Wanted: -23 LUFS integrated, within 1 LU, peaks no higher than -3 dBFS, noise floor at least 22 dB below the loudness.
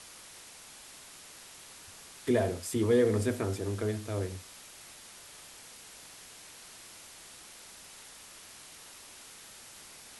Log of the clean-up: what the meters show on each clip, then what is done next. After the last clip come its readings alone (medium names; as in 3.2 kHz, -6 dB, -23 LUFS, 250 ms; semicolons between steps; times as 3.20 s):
noise floor -51 dBFS; noise floor target -53 dBFS; loudness -30.5 LUFS; peak level -15.0 dBFS; loudness target -23.0 LUFS
-> noise reduction 6 dB, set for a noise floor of -51 dBFS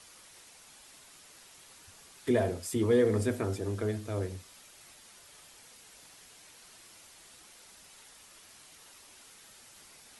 noise floor -56 dBFS; loudness -30.5 LUFS; peak level -15.0 dBFS; loudness target -23.0 LUFS
-> trim +7.5 dB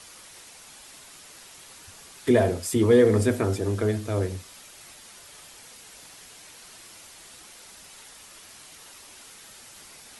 loudness -23.0 LUFS; peak level -7.5 dBFS; noise floor -48 dBFS